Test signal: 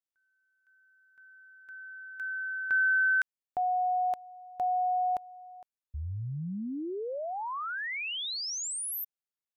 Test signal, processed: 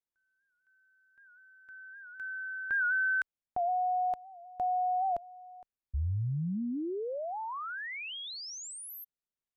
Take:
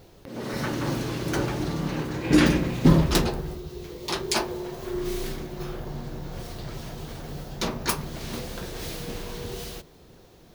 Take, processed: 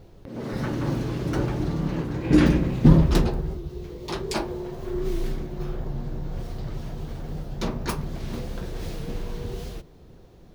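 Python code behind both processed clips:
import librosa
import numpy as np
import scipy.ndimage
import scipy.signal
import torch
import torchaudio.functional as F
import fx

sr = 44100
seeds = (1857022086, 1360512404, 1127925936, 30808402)

y = fx.tilt_eq(x, sr, slope=-2.0)
y = fx.record_warp(y, sr, rpm=78.0, depth_cents=100.0)
y = y * 10.0 ** (-2.5 / 20.0)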